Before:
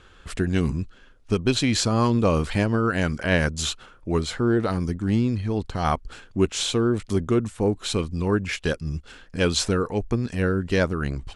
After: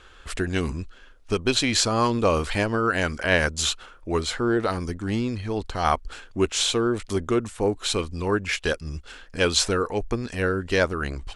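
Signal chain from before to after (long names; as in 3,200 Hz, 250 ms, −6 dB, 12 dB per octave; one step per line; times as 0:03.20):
parametric band 150 Hz −10.5 dB 1.9 octaves
level +3 dB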